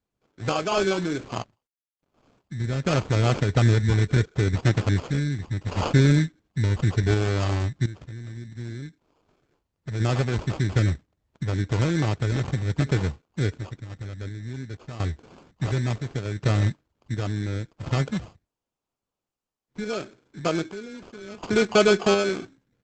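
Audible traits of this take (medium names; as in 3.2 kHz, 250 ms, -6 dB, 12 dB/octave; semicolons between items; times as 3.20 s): phasing stages 8, 0.7 Hz, lowest notch 650–4200 Hz; aliases and images of a low sample rate 1.9 kHz, jitter 0%; random-step tremolo 1.4 Hz, depth 90%; Opus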